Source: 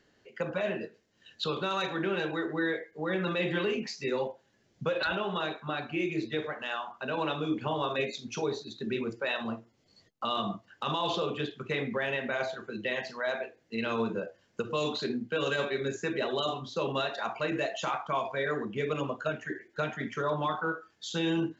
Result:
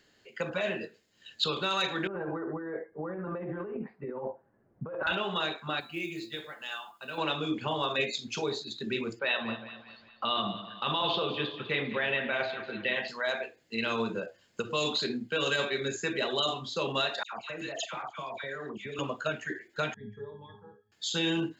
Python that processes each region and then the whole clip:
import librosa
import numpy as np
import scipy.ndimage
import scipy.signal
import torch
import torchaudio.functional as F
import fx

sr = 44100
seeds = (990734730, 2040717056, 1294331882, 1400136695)

y = fx.chain(x, sr, fx.cheby2_lowpass(hz=5400.0, order=4, stop_db=70),
    fx.over_compress(threshold_db=-35.0, ratio=-1.0), at=(2.07, 5.07))
y = fx.chain(y, sr, fx.high_shelf(hz=4800.0, db=8.5),
    fx.comb_fb(f0_hz=170.0, decay_s=0.18, harmonics='all', damping=0.0, mix_pct=80),
    fx.quant_companded(bits=8), at=(5.8, 7.18))
y = fx.chain(y, sr, fx.lowpass(hz=4000.0, slope=24),
    fx.echo_split(split_hz=870.0, low_ms=137, high_ms=200, feedback_pct=52, wet_db=-12), at=(9.19, 13.08))
y = fx.chain(y, sr, fx.level_steps(step_db=19),
    fx.dispersion(late='lows', ms=100.0, hz=1700.0), at=(17.23, 18.99))
y = fx.chain(y, sr, fx.peak_eq(hz=97.0, db=15.0, octaves=2.0),
    fx.octave_resonator(note='G#', decay_s=0.21), at=(19.94, 20.92))
y = fx.high_shelf(y, sr, hz=2300.0, db=10.5)
y = fx.notch(y, sr, hz=5800.0, q=5.8)
y = y * 10.0 ** (-1.5 / 20.0)